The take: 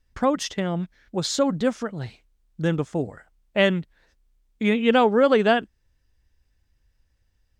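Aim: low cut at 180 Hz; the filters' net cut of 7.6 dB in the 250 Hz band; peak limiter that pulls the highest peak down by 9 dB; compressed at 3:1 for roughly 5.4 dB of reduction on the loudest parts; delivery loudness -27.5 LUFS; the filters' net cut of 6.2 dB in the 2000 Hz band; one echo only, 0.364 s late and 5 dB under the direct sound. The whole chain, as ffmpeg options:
-af "highpass=180,equalizer=f=250:t=o:g=-7.5,equalizer=f=2k:t=o:g=-8,acompressor=threshold=-23dB:ratio=3,alimiter=limit=-23.5dB:level=0:latency=1,aecho=1:1:364:0.562,volume=6dB"

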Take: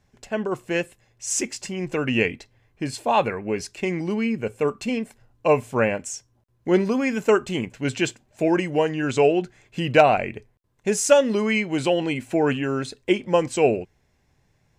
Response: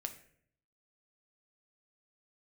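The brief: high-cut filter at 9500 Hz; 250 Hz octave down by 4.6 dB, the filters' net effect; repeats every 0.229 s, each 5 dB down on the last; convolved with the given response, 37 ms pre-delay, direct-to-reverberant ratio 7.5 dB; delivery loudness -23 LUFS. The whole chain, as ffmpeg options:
-filter_complex "[0:a]lowpass=9.5k,equalizer=f=250:t=o:g=-6.5,aecho=1:1:229|458|687|916|1145|1374|1603:0.562|0.315|0.176|0.0988|0.0553|0.031|0.0173,asplit=2[a][b];[1:a]atrim=start_sample=2205,adelay=37[c];[b][c]afir=irnorm=-1:irlink=0,volume=-5.5dB[d];[a][d]amix=inputs=2:normalize=0,volume=-0.5dB"

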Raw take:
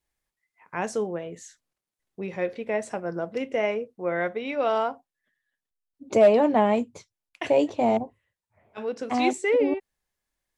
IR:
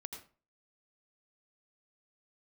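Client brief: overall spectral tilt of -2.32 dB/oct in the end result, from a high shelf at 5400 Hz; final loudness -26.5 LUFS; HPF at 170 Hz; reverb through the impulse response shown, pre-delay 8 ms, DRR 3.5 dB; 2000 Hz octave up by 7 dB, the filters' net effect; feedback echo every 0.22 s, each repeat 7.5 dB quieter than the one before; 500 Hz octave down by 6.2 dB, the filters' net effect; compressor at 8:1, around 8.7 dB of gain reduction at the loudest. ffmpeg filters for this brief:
-filter_complex "[0:a]highpass=170,equalizer=f=500:t=o:g=-8.5,equalizer=f=2k:t=o:g=9,highshelf=f=5.4k:g=-4,acompressor=threshold=-26dB:ratio=8,aecho=1:1:220|440|660|880|1100:0.422|0.177|0.0744|0.0312|0.0131,asplit=2[a][b];[1:a]atrim=start_sample=2205,adelay=8[c];[b][c]afir=irnorm=-1:irlink=0,volume=-0.5dB[d];[a][d]amix=inputs=2:normalize=0,volume=4dB"

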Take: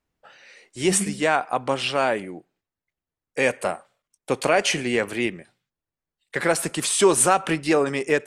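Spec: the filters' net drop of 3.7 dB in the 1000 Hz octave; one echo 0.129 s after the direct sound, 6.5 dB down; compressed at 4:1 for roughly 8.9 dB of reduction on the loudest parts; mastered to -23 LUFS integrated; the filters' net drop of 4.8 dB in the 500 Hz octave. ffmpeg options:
-af "equalizer=f=500:t=o:g=-5.5,equalizer=f=1k:t=o:g=-3,acompressor=threshold=-26dB:ratio=4,aecho=1:1:129:0.473,volume=6.5dB"

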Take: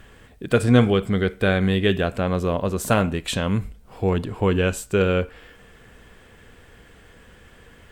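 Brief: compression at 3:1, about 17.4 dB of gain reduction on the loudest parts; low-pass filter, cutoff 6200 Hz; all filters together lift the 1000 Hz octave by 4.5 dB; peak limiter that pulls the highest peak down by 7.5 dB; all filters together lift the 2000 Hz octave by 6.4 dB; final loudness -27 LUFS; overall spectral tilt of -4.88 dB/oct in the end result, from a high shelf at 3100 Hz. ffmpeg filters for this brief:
-af "lowpass=6.2k,equalizer=f=1k:t=o:g=3.5,equalizer=f=2k:t=o:g=4.5,highshelf=f=3.1k:g=8.5,acompressor=threshold=-35dB:ratio=3,volume=10.5dB,alimiter=limit=-13.5dB:level=0:latency=1"

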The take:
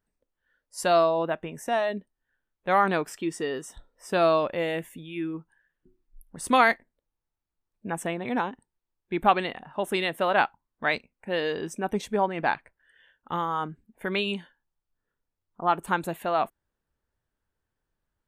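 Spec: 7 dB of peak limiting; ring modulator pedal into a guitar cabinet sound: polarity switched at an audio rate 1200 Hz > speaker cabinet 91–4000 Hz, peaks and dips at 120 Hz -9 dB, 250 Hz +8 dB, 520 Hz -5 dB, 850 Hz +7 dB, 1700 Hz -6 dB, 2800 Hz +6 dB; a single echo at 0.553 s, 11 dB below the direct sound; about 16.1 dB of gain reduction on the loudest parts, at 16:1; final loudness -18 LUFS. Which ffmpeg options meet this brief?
-af "acompressor=threshold=-30dB:ratio=16,alimiter=level_in=3dB:limit=-24dB:level=0:latency=1,volume=-3dB,aecho=1:1:553:0.282,aeval=exprs='val(0)*sgn(sin(2*PI*1200*n/s))':c=same,highpass=91,equalizer=f=120:t=q:w=4:g=-9,equalizer=f=250:t=q:w=4:g=8,equalizer=f=520:t=q:w=4:g=-5,equalizer=f=850:t=q:w=4:g=7,equalizer=f=1.7k:t=q:w=4:g=-6,equalizer=f=2.8k:t=q:w=4:g=6,lowpass=f=4k:w=0.5412,lowpass=f=4k:w=1.3066,volume=19.5dB"

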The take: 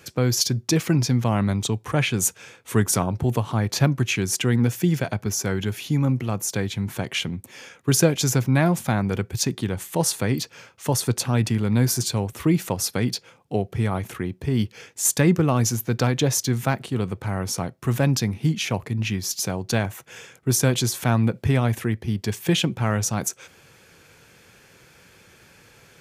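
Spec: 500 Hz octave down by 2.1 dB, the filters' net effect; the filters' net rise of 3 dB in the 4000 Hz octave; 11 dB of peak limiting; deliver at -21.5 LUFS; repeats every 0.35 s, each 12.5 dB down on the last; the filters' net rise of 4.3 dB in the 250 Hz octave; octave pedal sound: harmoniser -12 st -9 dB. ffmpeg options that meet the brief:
-filter_complex "[0:a]equalizer=f=250:t=o:g=7,equalizer=f=500:t=o:g=-5.5,equalizer=f=4k:t=o:g=4,alimiter=limit=-14dB:level=0:latency=1,aecho=1:1:350|700|1050:0.237|0.0569|0.0137,asplit=2[a][b];[b]asetrate=22050,aresample=44100,atempo=2,volume=-9dB[c];[a][c]amix=inputs=2:normalize=0,volume=2.5dB"

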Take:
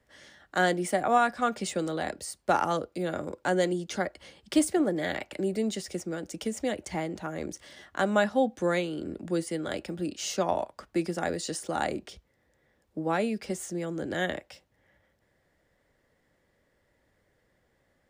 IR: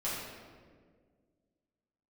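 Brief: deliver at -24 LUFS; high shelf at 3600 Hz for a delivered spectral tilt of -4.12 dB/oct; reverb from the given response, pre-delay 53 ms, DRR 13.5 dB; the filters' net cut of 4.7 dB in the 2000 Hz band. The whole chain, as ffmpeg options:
-filter_complex "[0:a]equalizer=f=2k:t=o:g=-8,highshelf=f=3.6k:g=5.5,asplit=2[a][b];[1:a]atrim=start_sample=2205,adelay=53[c];[b][c]afir=irnorm=-1:irlink=0,volume=-19dB[d];[a][d]amix=inputs=2:normalize=0,volume=6dB"

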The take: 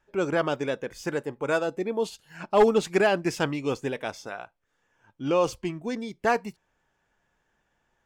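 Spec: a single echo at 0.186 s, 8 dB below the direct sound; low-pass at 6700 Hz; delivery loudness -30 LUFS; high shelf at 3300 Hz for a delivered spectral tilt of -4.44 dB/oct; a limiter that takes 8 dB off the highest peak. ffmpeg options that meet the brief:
-af "lowpass=6.7k,highshelf=f=3.3k:g=8.5,alimiter=limit=-17dB:level=0:latency=1,aecho=1:1:186:0.398,volume=-1dB"

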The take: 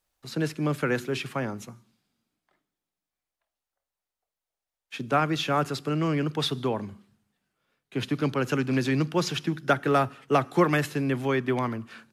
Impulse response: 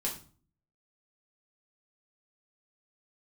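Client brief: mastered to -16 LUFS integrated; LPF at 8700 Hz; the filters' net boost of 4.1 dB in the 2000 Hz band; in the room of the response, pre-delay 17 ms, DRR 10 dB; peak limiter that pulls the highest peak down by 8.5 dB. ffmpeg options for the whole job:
-filter_complex "[0:a]lowpass=8.7k,equalizer=f=2k:t=o:g=5.5,alimiter=limit=-15dB:level=0:latency=1,asplit=2[a][b];[1:a]atrim=start_sample=2205,adelay=17[c];[b][c]afir=irnorm=-1:irlink=0,volume=-13dB[d];[a][d]amix=inputs=2:normalize=0,volume=11dB"

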